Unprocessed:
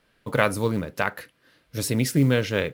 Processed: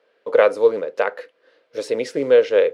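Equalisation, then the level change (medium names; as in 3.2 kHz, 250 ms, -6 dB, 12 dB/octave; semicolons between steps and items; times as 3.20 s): resonant high-pass 480 Hz, resonance Q 4.9; distance through air 110 m; peaking EQ 11 kHz +2 dB 0.22 oct; 0.0 dB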